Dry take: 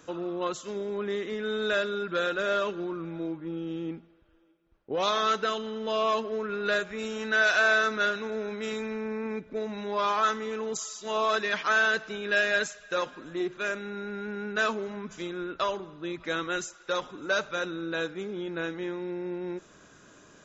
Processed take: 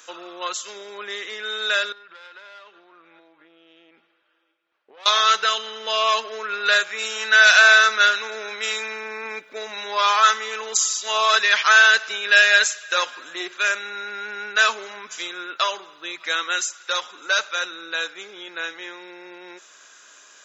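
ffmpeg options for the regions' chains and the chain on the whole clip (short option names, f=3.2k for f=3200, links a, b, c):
-filter_complex "[0:a]asettb=1/sr,asplit=3[a][b][c];[a]atrim=end=1.924[d];[b]atrim=start=1.92:end=5.06,asetpts=PTS-STARTPTS,afade=t=in:d=0.004:c=qsin,afade=t=out:st=3.136:d=0.004:c=qsin,lowpass=3.4k,aeval=exprs='(tanh(12.6*val(0)+0.6)-tanh(0.6))/12.6':c=same,acompressor=threshold=-43dB:ratio=16:attack=3.2:release=140:knee=1:detection=peak[e];[c]atrim=start=5.056[f];[d][e]acrossfade=d=0.004:c1=hsin:c2=qsin[g];[g][f]acrossfade=d=0.004:c1=qsin:c2=hsin,highpass=480,dynaudnorm=f=320:g=31:m=3.5dB,tiltshelf=f=970:g=-9,volume=4dB"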